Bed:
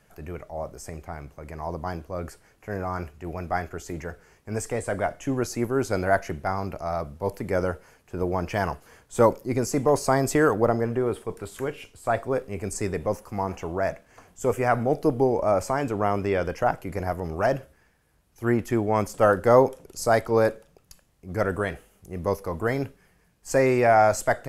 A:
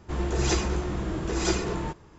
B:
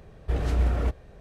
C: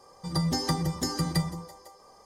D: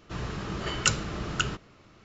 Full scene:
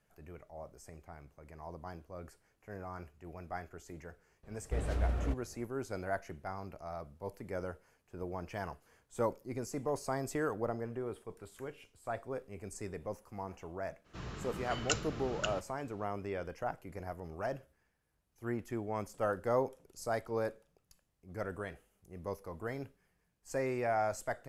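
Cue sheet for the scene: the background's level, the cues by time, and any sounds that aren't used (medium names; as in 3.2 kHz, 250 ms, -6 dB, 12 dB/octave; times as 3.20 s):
bed -14.5 dB
4.43 s: add B -9 dB
14.04 s: add D -9.5 dB, fades 0.02 s
not used: A, C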